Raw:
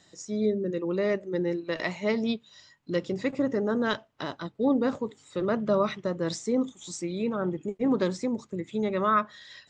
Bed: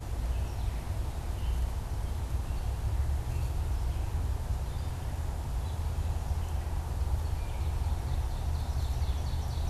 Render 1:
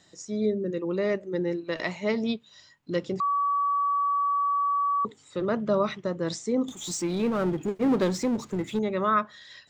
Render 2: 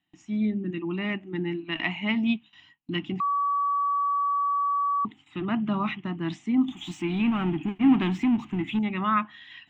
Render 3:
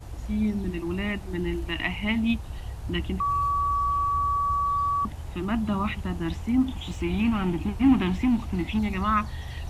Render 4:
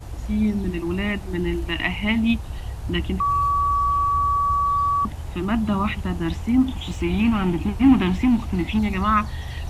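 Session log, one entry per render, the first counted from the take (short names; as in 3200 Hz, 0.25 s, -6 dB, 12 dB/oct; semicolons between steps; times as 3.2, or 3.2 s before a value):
3.2–5.05 bleep 1140 Hz -22 dBFS; 6.68–8.79 power-law curve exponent 0.7
gate with hold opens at -44 dBFS; EQ curve 120 Hz 0 dB, 310 Hz +6 dB, 520 Hz -29 dB, 730 Hz +3 dB, 1500 Hz -2 dB, 2900 Hz +12 dB, 4500 Hz -17 dB
add bed -3 dB
gain +4.5 dB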